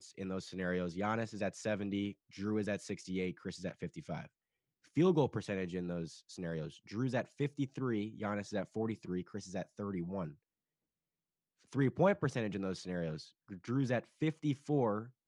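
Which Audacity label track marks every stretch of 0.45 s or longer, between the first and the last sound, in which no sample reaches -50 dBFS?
4.260000	4.960000	silence
10.340000	11.720000	silence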